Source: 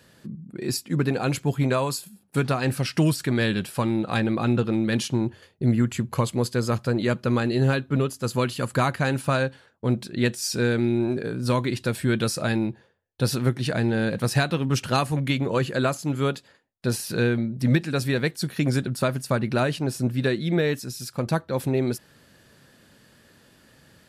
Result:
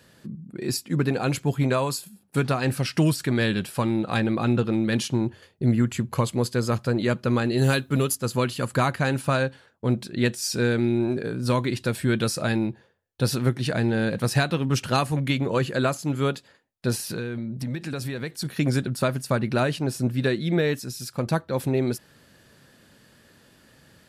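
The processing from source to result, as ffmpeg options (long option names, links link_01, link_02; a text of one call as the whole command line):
ffmpeg -i in.wav -filter_complex "[0:a]asplit=3[link_01][link_02][link_03];[link_01]afade=type=out:start_time=7.57:duration=0.02[link_04];[link_02]aemphasis=mode=production:type=75kf,afade=type=in:start_time=7.57:duration=0.02,afade=type=out:start_time=8.14:duration=0.02[link_05];[link_03]afade=type=in:start_time=8.14:duration=0.02[link_06];[link_04][link_05][link_06]amix=inputs=3:normalize=0,asplit=3[link_07][link_08][link_09];[link_07]afade=type=out:start_time=17.06:duration=0.02[link_10];[link_08]acompressor=threshold=-26dB:ratio=6:attack=3.2:release=140:knee=1:detection=peak,afade=type=in:start_time=17.06:duration=0.02,afade=type=out:start_time=18.44:duration=0.02[link_11];[link_09]afade=type=in:start_time=18.44:duration=0.02[link_12];[link_10][link_11][link_12]amix=inputs=3:normalize=0" out.wav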